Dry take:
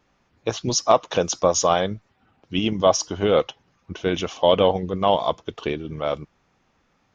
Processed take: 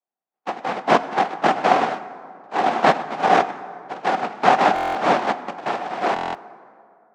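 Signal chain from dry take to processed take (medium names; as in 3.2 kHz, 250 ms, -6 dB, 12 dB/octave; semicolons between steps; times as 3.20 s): rotating-head pitch shifter +10 st; noise-vocoded speech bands 1; low-pass 1.2 kHz 12 dB/octave; gate with hold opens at -57 dBFS; level rider gain up to 12 dB; high-pass 180 Hz 24 dB/octave; peaking EQ 750 Hz +12 dB 0.33 oct; plate-style reverb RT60 2.3 s, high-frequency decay 0.5×, DRR 12.5 dB; buffer glitch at 4.74/6.14 s, samples 1024, times 8; trim -3 dB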